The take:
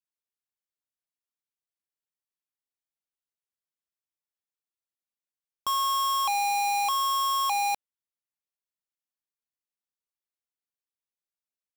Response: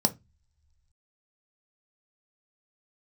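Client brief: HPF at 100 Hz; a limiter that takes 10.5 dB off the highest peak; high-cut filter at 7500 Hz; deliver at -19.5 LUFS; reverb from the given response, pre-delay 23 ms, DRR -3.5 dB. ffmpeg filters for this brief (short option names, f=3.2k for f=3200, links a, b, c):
-filter_complex "[0:a]highpass=100,lowpass=7.5k,alimiter=level_in=9dB:limit=-24dB:level=0:latency=1,volume=-9dB,asplit=2[a][b];[1:a]atrim=start_sample=2205,adelay=23[c];[b][c]afir=irnorm=-1:irlink=0,volume=-5.5dB[d];[a][d]amix=inputs=2:normalize=0,volume=13dB"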